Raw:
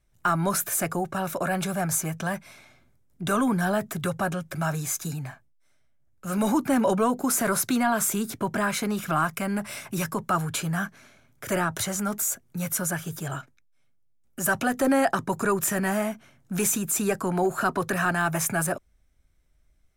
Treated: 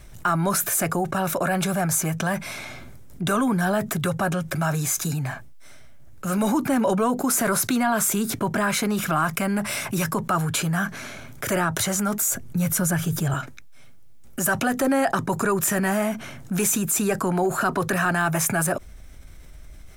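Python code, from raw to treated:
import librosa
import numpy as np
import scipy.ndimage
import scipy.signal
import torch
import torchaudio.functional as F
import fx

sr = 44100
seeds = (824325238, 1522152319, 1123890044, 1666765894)

y = fx.low_shelf(x, sr, hz=210.0, db=10.0, at=(12.31, 13.34))
y = fx.env_flatten(y, sr, amount_pct=50)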